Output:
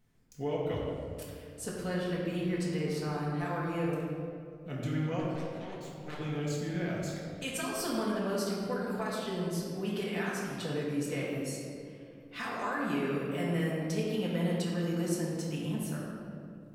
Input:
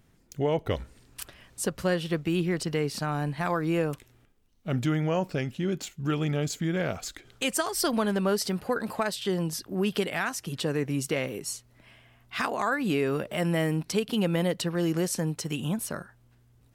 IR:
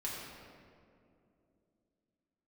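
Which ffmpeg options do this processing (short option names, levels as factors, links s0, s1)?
-filter_complex "[0:a]asettb=1/sr,asplit=3[s0][s1][s2];[s0]atrim=end=5.194[s3];[s1]atrim=start=5.19:end=6.19,asetpts=PTS-STARTPTS,afade=t=in:d=0.004:c=qsin,afade=t=out:st=0.996:d=0.004:c=qsin,aeval=exprs='0.15*(cos(1*acos(clip(val(0)/0.15,-1,1)))-cos(1*PI/2))+0.0668*(cos(3*acos(clip(val(0)/0.15,-1,1)))-cos(3*PI/2))+0.0188*(cos(5*acos(clip(val(0)/0.15,-1,1)))-cos(5*PI/2))+0.0188*(cos(7*acos(clip(val(0)/0.15,-1,1)))-cos(7*PI/2))+0.00211*(cos(8*acos(clip(val(0)/0.15,-1,1)))-cos(8*PI/2))':c=same[s4];[s2]atrim=start=6.186[s5];[s3][s4]acrossfade=d=0.004:c1=hsin:c2=qsin[s6];[s6][s5]acrossfade=d=0.004:c1=qsin:c2=hsin[s7];[1:a]atrim=start_sample=2205[s8];[s7][s8]afir=irnorm=-1:irlink=0,volume=0.398"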